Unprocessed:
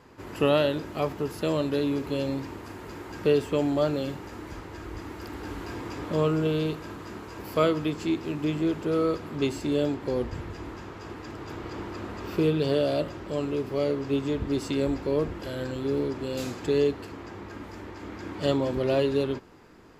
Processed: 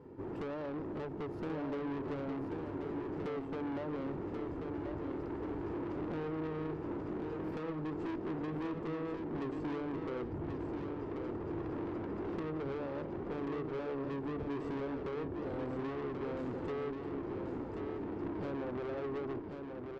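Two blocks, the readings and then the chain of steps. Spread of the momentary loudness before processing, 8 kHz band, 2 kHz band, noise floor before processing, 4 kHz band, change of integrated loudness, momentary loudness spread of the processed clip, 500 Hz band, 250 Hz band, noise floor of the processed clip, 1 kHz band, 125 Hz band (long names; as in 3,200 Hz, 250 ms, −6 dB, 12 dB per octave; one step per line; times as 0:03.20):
16 LU, below −25 dB, −11.0 dB, −42 dBFS, −21.0 dB, −11.5 dB, 2 LU, −12.0 dB, −9.0 dB, −43 dBFS, −8.0 dB, −11.0 dB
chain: comb filter 2.2 ms, depth 58%
downward compressor 12 to 1, threshold −29 dBFS, peak gain reduction 15 dB
resonant band-pass 230 Hz, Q 1.8
tube saturation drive 47 dB, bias 0.45
on a send: repeating echo 1,085 ms, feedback 34%, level −6 dB
on the sum: level +10 dB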